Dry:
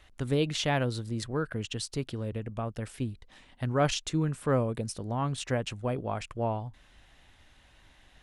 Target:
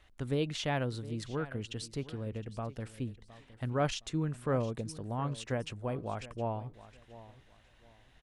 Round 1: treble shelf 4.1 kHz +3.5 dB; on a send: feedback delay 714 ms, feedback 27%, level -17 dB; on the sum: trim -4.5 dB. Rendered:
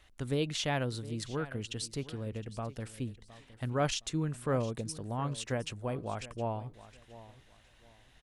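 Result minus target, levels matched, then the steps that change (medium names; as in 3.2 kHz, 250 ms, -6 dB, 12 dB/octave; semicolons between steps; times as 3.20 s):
8 kHz band +5.0 dB
change: treble shelf 4.1 kHz -4 dB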